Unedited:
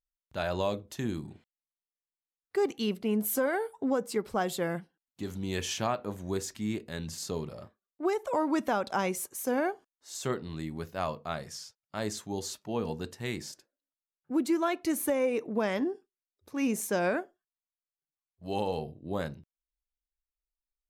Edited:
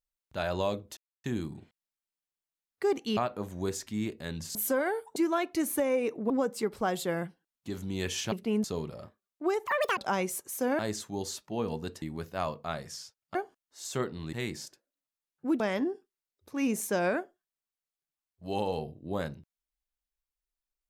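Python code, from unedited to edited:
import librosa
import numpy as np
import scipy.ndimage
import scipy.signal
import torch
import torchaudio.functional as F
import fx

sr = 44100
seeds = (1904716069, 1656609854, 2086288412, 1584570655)

y = fx.edit(x, sr, fx.insert_silence(at_s=0.97, length_s=0.27),
    fx.swap(start_s=2.9, length_s=0.32, other_s=5.85, other_length_s=1.38),
    fx.speed_span(start_s=8.26, length_s=0.57, speed=1.9),
    fx.swap(start_s=9.65, length_s=0.98, other_s=11.96, other_length_s=1.23),
    fx.move(start_s=14.46, length_s=1.14, to_s=3.83), tone=tone)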